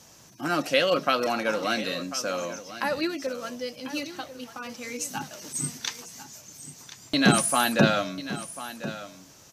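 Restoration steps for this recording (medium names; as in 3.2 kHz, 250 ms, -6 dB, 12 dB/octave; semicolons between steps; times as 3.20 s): expander -41 dBFS, range -21 dB; inverse comb 1044 ms -14 dB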